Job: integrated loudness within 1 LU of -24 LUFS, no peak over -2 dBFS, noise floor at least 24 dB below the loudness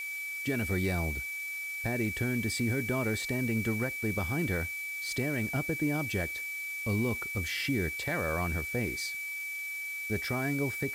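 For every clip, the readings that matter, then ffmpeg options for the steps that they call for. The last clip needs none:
steady tone 2.3 kHz; tone level -35 dBFS; noise floor -38 dBFS; noise floor target -56 dBFS; loudness -31.5 LUFS; peak level -19.5 dBFS; loudness target -24.0 LUFS
-> -af "bandreject=f=2300:w=30"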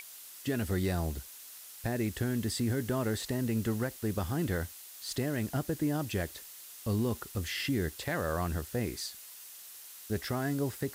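steady tone not found; noise floor -49 dBFS; noise floor target -58 dBFS
-> -af "afftdn=nr=9:nf=-49"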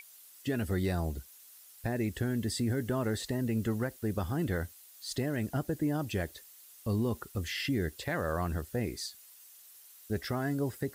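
noise floor -55 dBFS; noise floor target -58 dBFS
-> -af "afftdn=nr=6:nf=-55"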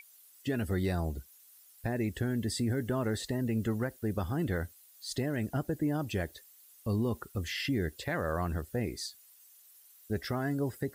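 noise floor -59 dBFS; loudness -34.0 LUFS; peak level -22.0 dBFS; loudness target -24.0 LUFS
-> -af "volume=3.16"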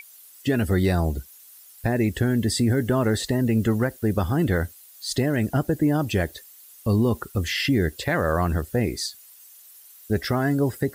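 loudness -24.0 LUFS; peak level -12.0 dBFS; noise floor -49 dBFS

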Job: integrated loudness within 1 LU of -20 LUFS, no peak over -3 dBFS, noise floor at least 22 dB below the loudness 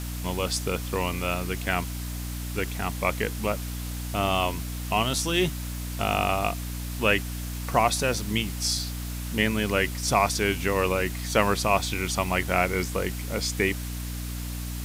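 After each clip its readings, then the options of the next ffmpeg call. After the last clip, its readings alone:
hum 60 Hz; highest harmonic 300 Hz; hum level -31 dBFS; noise floor -33 dBFS; noise floor target -49 dBFS; loudness -26.5 LUFS; peak level -6.5 dBFS; loudness target -20.0 LUFS
-> -af "bandreject=f=60:t=h:w=6,bandreject=f=120:t=h:w=6,bandreject=f=180:t=h:w=6,bandreject=f=240:t=h:w=6,bandreject=f=300:t=h:w=6"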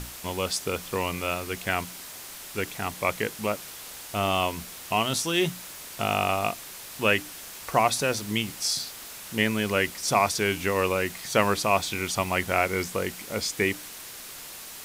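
hum not found; noise floor -42 dBFS; noise floor target -49 dBFS
-> -af "afftdn=nr=7:nf=-42"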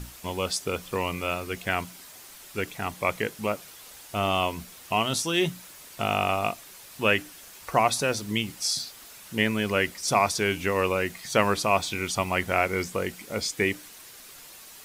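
noise floor -47 dBFS; noise floor target -49 dBFS
-> -af "afftdn=nr=6:nf=-47"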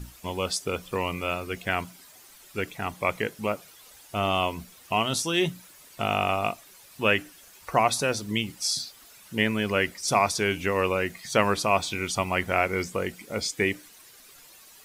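noise floor -52 dBFS; loudness -27.0 LUFS; peak level -6.0 dBFS; loudness target -20.0 LUFS
-> -af "volume=2.24,alimiter=limit=0.708:level=0:latency=1"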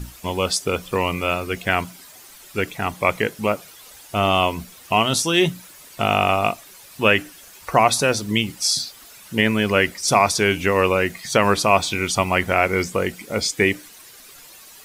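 loudness -20.0 LUFS; peak level -3.0 dBFS; noise floor -45 dBFS

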